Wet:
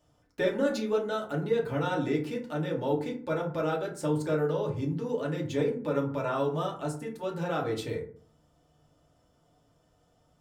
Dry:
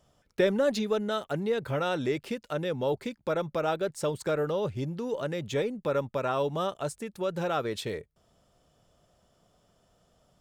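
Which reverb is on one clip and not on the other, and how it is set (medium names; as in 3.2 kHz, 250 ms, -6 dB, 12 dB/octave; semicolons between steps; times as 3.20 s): FDN reverb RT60 0.48 s, low-frequency decay 1.45×, high-frequency decay 0.45×, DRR -2.5 dB; trim -6 dB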